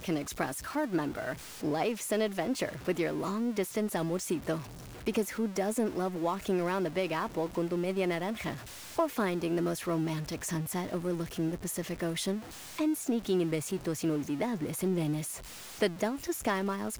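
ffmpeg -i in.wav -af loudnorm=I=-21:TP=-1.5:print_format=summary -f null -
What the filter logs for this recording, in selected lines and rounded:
Input Integrated:    -32.7 LUFS
Input True Peak:     -15.1 dBTP
Input LRA:             0.7 LU
Input Threshold:     -42.7 LUFS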